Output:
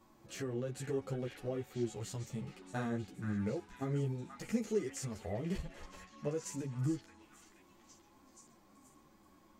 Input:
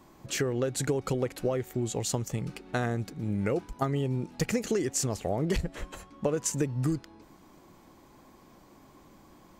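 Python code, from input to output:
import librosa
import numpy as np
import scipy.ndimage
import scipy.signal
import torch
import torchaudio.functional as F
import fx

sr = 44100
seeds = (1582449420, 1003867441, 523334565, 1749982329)

y = fx.echo_stepped(x, sr, ms=478, hz=1600.0, octaves=0.7, feedback_pct=70, wet_db=-4.5)
y = fx.hpss(y, sr, part='percussive', gain_db=-11)
y = fx.ensemble(y, sr)
y = y * librosa.db_to_amplitude(-2.5)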